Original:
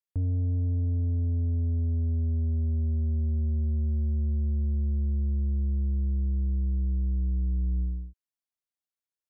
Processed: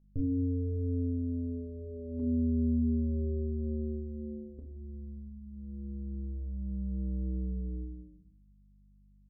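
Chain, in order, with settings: elliptic low-pass 560 Hz, stop band 50 dB; hum notches 50/100/150/200/250/300/350/400 Hz; 2.19–4.59 s: dynamic bell 320 Hz, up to +7 dB, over -51 dBFS, Q 1.3; comb 7.1 ms, depth 84%; hum 50 Hz, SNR 32 dB; simulated room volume 320 m³, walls furnished, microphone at 1.2 m

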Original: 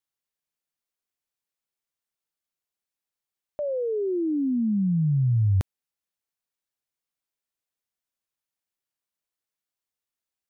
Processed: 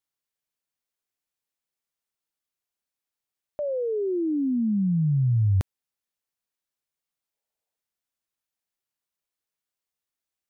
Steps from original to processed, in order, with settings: time-frequency box 7.34–7.76 s, 420–950 Hz +8 dB

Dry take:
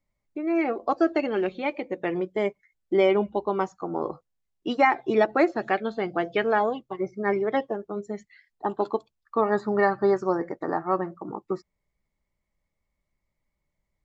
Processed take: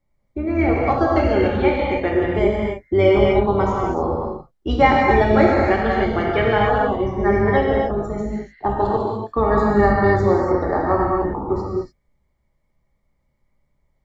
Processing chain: octave divider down 2 oct, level -1 dB; band-stop 2.6 kHz, Q 10; in parallel at +1 dB: compression, threshold -28 dBFS, peak gain reduction 13 dB; on the sum: gated-style reverb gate 320 ms flat, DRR -4 dB; tape noise reduction on one side only decoder only; trim -1 dB

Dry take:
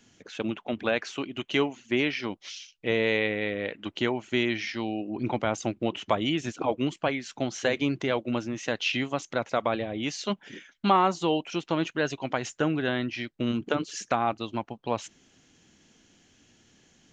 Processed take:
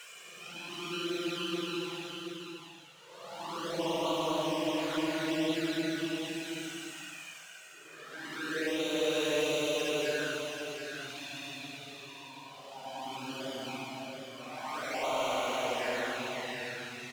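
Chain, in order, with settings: dead-time distortion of 0.12 ms; frequency weighting A; Paulstretch 18×, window 0.10 s, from 11.50 s; saturation -18.5 dBFS, distortion -22 dB; touch-sensitive flanger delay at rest 2.3 ms, full sweep at -25.5 dBFS; delay 727 ms -6.5 dB

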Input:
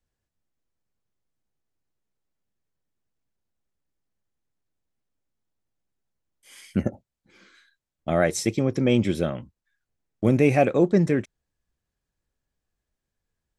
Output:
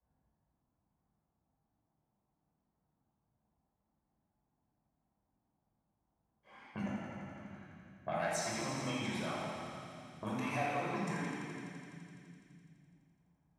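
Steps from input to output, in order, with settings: peaking EQ 110 Hz -6 dB 1 oct; level-controlled noise filter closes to 450 Hz, open at -19 dBFS; in parallel at -2 dB: peak limiter -17 dBFS, peak gain reduction 10 dB; on the sum: saturation -12 dBFS, distortion -15 dB; compression 2.5:1, threshold -36 dBFS, peak gain reduction 13.5 dB; on a send: thinning echo 84 ms, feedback 79%, high-pass 560 Hz, level -4 dB; on the sum: reverb removal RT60 0.78 s; high-pass 80 Hz; resonant low shelf 620 Hz -8 dB, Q 3; simulated room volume 2200 m³, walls mixed, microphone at 5.4 m; three bands compressed up and down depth 40%; trim -6 dB

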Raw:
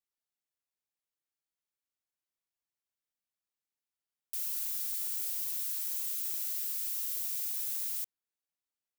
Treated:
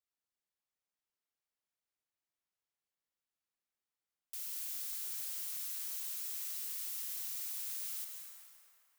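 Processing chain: treble shelf 8.3 kHz -5.5 dB; on a send: feedback echo behind a band-pass 391 ms, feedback 30%, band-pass 940 Hz, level -4.5 dB; on the sum: plate-style reverb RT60 2.1 s, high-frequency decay 0.8×, pre-delay 115 ms, DRR 3.5 dB; trim -2.5 dB

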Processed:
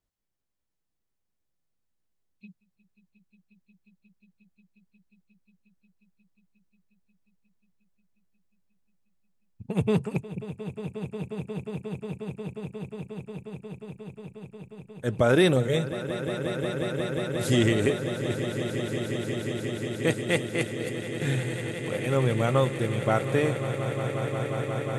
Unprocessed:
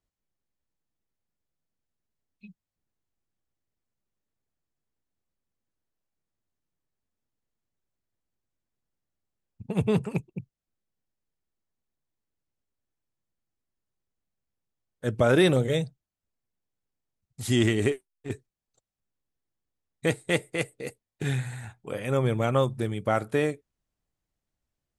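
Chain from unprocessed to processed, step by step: echo with a slow build-up 179 ms, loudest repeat 8, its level -13.5 dB

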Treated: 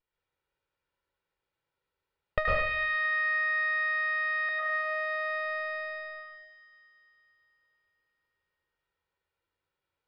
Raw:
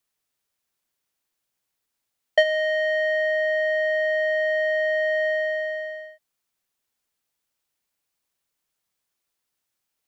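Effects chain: comb filter that takes the minimum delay 2.1 ms; 2.45–4.49 s: graphic EQ 500/1000/2000/4000 Hz -4/+9/+12/+10 dB; compression 16:1, threshold -23 dBFS, peak gain reduction 14 dB; distance through air 380 m; feedback echo behind a high-pass 224 ms, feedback 66%, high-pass 1.8 kHz, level -9.5 dB; reverberation RT60 0.65 s, pre-delay 98 ms, DRR -3.5 dB

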